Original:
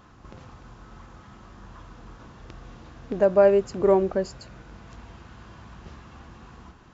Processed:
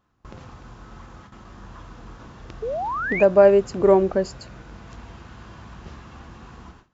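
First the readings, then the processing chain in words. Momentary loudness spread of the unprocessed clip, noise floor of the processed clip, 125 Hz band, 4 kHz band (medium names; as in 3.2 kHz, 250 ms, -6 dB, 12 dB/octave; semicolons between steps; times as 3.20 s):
15 LU, -55 dBFS, +3.5 dB, no reading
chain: gate with hold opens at -38 dBFS; painted sound rise, 2.62–3.23 s, 420–2600 Hz -30 dBFS; trim +3.5 dB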